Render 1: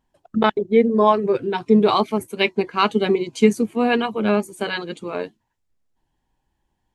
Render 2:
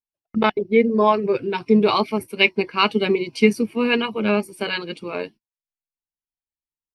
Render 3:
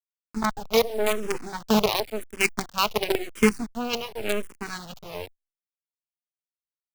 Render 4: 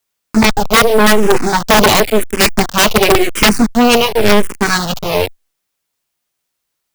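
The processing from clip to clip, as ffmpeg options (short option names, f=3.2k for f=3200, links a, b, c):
-af "bandreject=f=730:w=12,agate=range=-32dB:threshold=-41dB:ratio=16:detection=peak,superequalizer=12b=2.24:14b=2:15b=0.316,volume=-1dB"
-filter_complex "[0:a]acrusher=bits=3:dc=4:mix=0:aa=0.000001,asplit=2[a][b];[b]afreqshift=-0.93[c];[a][c]amix=inputs=2:normalize=1,volume=-2.5dB"
-af "aeval=exprs='0.473*sin(PI/2*6.31*val(0)/0.473)':c=same,volume=2.5dB"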